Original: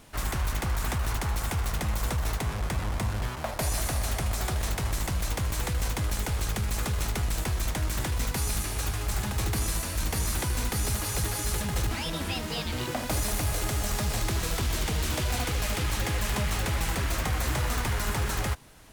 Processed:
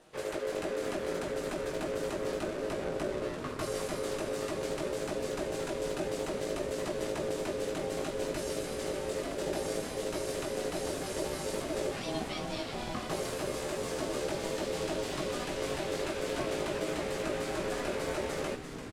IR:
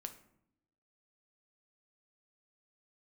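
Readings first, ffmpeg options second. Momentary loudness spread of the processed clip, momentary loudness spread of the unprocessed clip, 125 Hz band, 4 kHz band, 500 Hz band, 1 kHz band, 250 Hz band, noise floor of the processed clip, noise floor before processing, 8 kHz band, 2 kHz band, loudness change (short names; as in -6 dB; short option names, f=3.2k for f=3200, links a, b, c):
2 LU, 2 LU, -15.5 dB, -7.0 dB, +6.0 dB, -5.0 dB, -1.0 dB, -39 dBFS, -35 dBFS, -10.0 dB, -6.5 dB, -5.5 dB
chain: -filter_complex "[0:a]lowpass=8.8k,equalizer=f=190:t=o:w=1.5:g=4.5,bandreject=f=6.1k:w=20,aecho=1:1:6.7:0.49,flanger=delay=17.5:depth=2.8:speed=0.59,aeval=exprs='val(0)*sin(2*PI*480*n/s)':c=same,asplit=9[a][b][c][d][e][f][g][h][i];[b]adelay=342,afreqshift=-130,volume=-9dB[j];[c]adelay=684,afreqshift=-260,volume=-13.2dB[k];[d]adelay=1026,afreqshift=-390,volume=-17.3dB[l];[e]adelay=1368,afreqshift=-520,volume=-21.5dB[m];[f]adelay=1710,afreqshift=-650,volume=-25.6dB[n];[g]adelay=2052,afreqshift=-780,volume=-29.8dB[o];[h]adelay=2394,afreqshift=-910,volume=-33.9dB[p];[i]adelay=2736,afreqshift=-1040,volume=-38.1dB[q];[a][j][k][l][m][n][o][p][q]amix=inputs=9:normalize=0,volume=-2.5dB"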